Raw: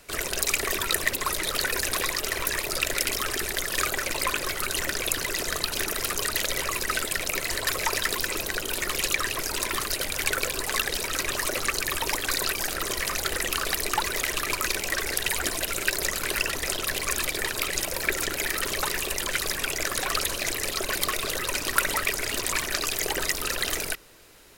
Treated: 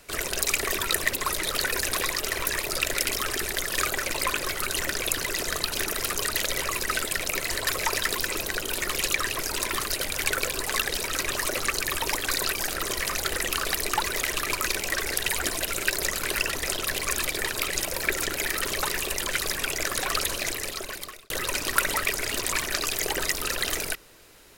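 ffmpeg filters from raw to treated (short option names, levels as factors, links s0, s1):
-filter_complex "[0:a]asplit=2[s0][s1];[s0]atrim=end=21.3,asetpts=PTS-STARTPTS,afade=t=out:st=20.38:d=0.92[s2];[s1]atrim=start=21.3,asetpts=PTS-STARTPTS,afade=t=in:d=0.004:c=hsin[s3];[s2][s3]concat=n=2:v=0:a=1"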